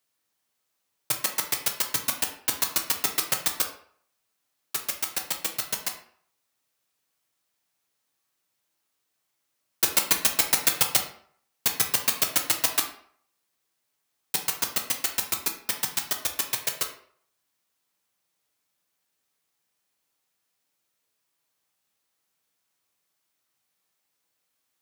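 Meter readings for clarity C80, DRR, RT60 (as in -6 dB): 12.0 dB, 2.5 dB, 0.60 s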